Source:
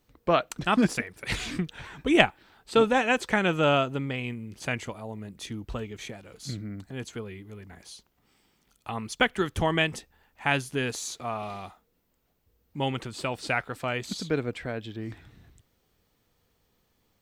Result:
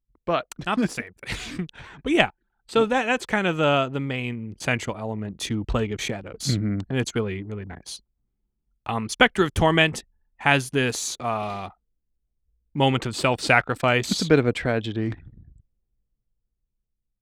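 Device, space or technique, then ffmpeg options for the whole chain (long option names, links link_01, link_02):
voice memo with heavy noise removal: -af "anlmdn=0.0158,dynaudnorm=framelen=430:gausssize=9:maxgain=16dB,volume=-1dB"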